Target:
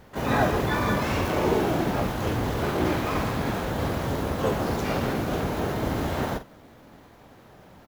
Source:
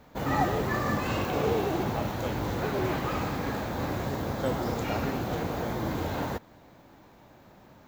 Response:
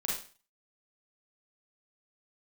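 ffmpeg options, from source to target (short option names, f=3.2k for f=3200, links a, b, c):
-filter_complex "[0:a]asplit=4[a][b][c][d];[b]asetrate=22050,aresample=44100,atempo=2,volume=-7dB[e];[c]asetrate=37084,aresample=44100,atempo=1.18921,volume=0dB[f];[d]asetrate=88200,aresample=44100,atempo=0.5,volume=-7dB[g];[a][e][f][g]amix=inputs=4:normalize=0,asplit=2[h][i];[i]adelay=48,volume=-11.5dB[j];[h][j]amix=inputs=2:normalize=0"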